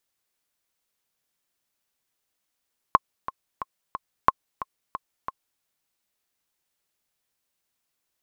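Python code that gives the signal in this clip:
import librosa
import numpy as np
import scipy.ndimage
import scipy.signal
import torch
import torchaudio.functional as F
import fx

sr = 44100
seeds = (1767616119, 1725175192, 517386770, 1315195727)

y = fx.click_track(sr, bpm=180, beats=4, bars=2, hz=1070.0, accent_db=15.0, level_db=-2.0)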